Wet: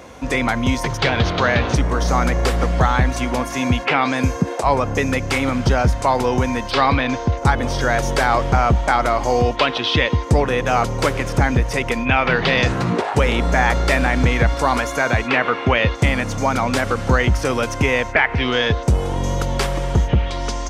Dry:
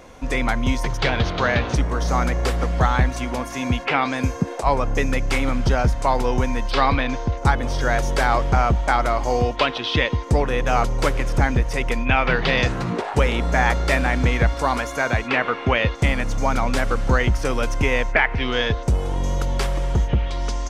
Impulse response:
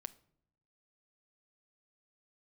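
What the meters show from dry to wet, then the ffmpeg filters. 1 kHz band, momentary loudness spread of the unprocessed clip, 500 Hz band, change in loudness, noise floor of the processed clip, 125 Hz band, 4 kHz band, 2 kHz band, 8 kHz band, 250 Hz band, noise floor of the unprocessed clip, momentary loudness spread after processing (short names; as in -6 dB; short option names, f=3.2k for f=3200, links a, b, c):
+3.0 dB, 5 LU, +3.5 dB, +3.0 dB, -28 dBFS, +3.0 dB, +3.5 dB, +3.0 dB, +4.5 dB, +4.0 dB, -31 dBFS, 4 LU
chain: -filter_complex "[0:a]asplit=2[a][b];[b]alimiter=limit=-13.5dB:level=0:latency=1,volume=0dB[c];[a][c]amix=inputs=2:normalize=0,highpass=f=54:w=0.5412,highpass=f=54:w=1.3066,volume=-1dB"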